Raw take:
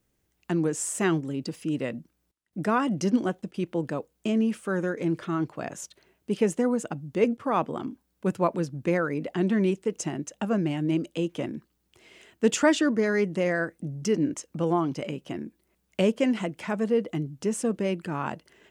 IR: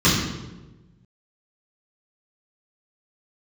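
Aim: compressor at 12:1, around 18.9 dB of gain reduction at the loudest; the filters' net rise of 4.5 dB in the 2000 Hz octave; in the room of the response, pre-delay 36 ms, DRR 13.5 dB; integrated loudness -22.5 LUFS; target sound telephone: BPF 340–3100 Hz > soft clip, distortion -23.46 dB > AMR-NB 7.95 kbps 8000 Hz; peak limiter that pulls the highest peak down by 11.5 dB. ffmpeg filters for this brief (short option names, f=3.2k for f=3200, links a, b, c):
-filter_complex "[0:a]equalizer=f=2k:t=o:g=6.5,acompressor=threshold=-35dB:ratio=12,alimiter=level_in=6dB:limit=-24dB:level=0:latency=1,volume=-6dB,asplit=2[a][b];[1:a]atrim=start_sample=2205,adelay=36[c];[b][c]afir=irnorm=-1:irlink=0,volume=-34dB[d];[a][d]amix=inputs=2:normalize=0,highpass=340,lowpass=3.1k,asoftclip=threshold=-31.5dB,volume=23.5dB" -ar 8000 -c:a libopencore_amrnb -b:a 7950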